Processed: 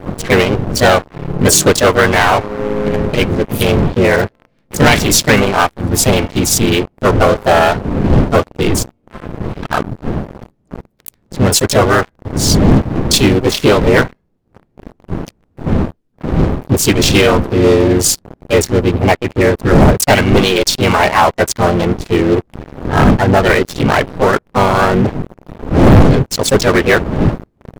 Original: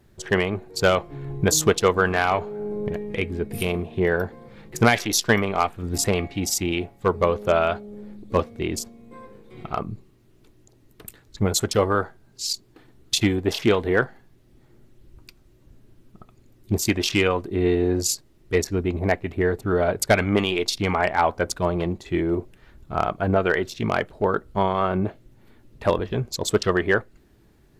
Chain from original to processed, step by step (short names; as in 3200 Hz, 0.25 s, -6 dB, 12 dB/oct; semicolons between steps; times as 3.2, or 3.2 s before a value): wind noise 230 Hz -25 dBFS; harmoniser -7 st -16 dB, -5 st -17 dB, +4 st -3 dB; sample leveller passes 5; gain -8 dB